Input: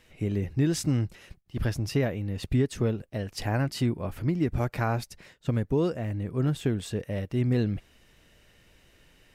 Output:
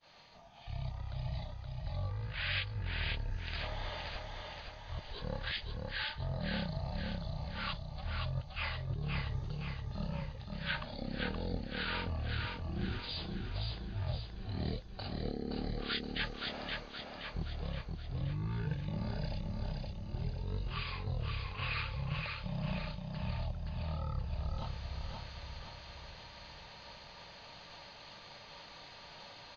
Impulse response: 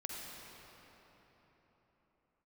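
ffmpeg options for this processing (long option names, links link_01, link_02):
-af "agate=range=-33dB:threshold=-56dB:ratio=3:detection=peak,aemphasis=mode=production:type=bsi,areverse,acompressor=threshold=-42dB:ratio=6,areverse,asetrate=13936,aresample=44100,aecho=1:1:522|1044|1566|2088|2610|3132|3654:0.668|0.341|0.174|0.0887|0.0452|0.0231|0.0118,volume=5dB"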